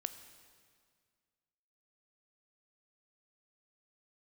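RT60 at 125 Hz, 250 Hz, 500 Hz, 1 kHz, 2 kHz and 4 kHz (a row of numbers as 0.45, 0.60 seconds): 2.2, 2.1, 1.9, 1.9, 1.8, 1.8 seconds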